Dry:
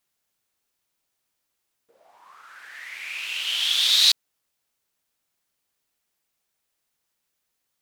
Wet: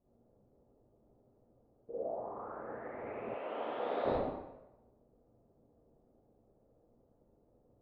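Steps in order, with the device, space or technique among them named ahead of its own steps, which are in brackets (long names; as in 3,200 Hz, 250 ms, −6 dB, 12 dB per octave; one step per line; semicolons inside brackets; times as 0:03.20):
next room (low-pass filter 560 Hz 24 dB per octave; convolution reverb RT60 1.0 s, pre-delay 33 ms, DRR −9.5 dB)
0:03.34–0:04.06: meter weighting curve A
level +15.5 dB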